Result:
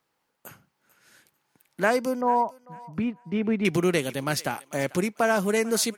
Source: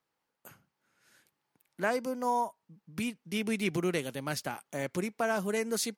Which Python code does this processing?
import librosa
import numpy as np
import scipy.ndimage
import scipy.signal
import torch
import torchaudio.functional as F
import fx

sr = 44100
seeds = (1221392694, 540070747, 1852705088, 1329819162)

y = fx.lowpass(x, sr, hz=1400.0, slope=12, at=(2.21, 3.65))
y = fx.echo_thinned(y, sr, ms=444, feedback_pct=28, hz=930.0, wet_db=-18)
y = F.gain(torch.from_numpy(y), 7.5).numpy()